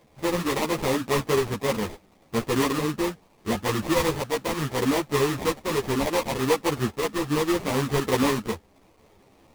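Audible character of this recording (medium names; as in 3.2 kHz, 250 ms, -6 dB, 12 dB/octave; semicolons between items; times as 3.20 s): a quantiser's noise floor 10-bit, dither triangular; tremolo saw up 0.72 Hz, depth 35%; aliases and images of a low sample rate 1.5 kHz, jitter 20%; a shimmering, thickened sound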